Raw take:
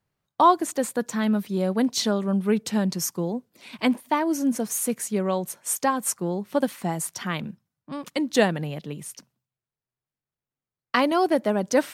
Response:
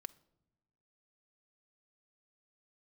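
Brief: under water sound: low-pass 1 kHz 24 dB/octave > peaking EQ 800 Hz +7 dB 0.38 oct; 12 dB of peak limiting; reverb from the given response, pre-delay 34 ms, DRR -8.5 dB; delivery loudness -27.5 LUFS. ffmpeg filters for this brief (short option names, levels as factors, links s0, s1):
-filter_complex "[0:a]alimiter=limit=0.15:level=0:latency=1,asplit=2[s0][s1];[1:a]atrim=start_sample=2205,adelay=34[s2];[s1][s2]afir=irnorm=-1:irlink=0,volume=4.73[s3];[s0][s3]amix=inputs=2:normalize=0,lowpass=f=1000:w=0.5412,lowpass=f=1000:w=1.3066,equalizer=f=800:t=o:w=0.38:g=7,volume=0.398"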